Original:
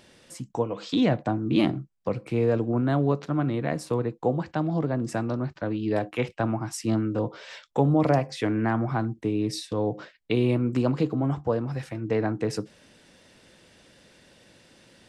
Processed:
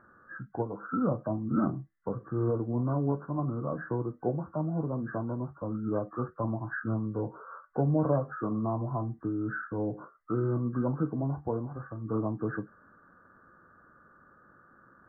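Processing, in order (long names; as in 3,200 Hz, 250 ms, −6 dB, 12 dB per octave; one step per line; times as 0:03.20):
hearing-aid frequency compression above 1,100 Hz 4 to 1
flanger 0.16 Hz, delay 9 ms, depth 7.9 ms, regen −60%
formants moved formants −2 semitones
level −1.5 dB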